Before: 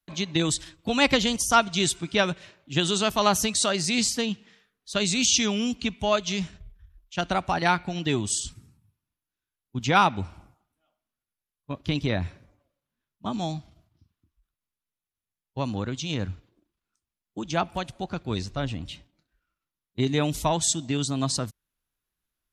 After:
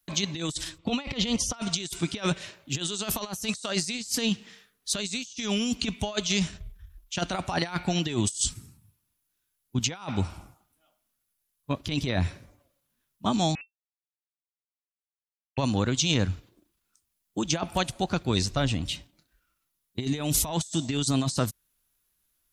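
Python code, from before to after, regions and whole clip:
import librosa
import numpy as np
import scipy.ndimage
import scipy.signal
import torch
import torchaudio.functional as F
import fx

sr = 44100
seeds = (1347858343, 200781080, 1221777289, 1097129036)

y = fx.chain(x, sr, fx.lowpass(hz=3400.0, slope=12),
    fx.notch(hz=1600.0, q=5.1), at=(0.78, 1.54))
y = fx.chain(y, sr, fx.schmitt(flips_db=-42.5),
    fx.freq_invert(carrier_hz=2700), at=(13.55, 15.58))
y = fx.high_shelf(y, sr, hz=5300.0, db=11.5)
y = fx.over_compress(y, sr, threshold_db=-27.0, ratio=-0.5)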